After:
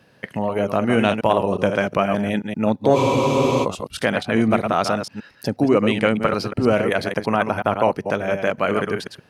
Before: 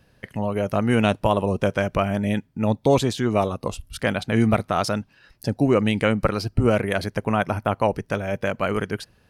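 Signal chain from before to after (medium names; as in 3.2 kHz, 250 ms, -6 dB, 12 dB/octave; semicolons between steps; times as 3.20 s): chunks repeated in reverse 121 ms, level -7 dB; Bessel high-pass 190 Hz, order 2; treble shelf 6.4 kHz -7.5 dB; in parallel at -1.5 dB: compression, threshold -30 dBFS, peak gain reduction 16.5 dB; on the sum: spectral freeze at 2.98 s, 0.65 s; transformer saturation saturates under 270 Hz; trim +1.5 dB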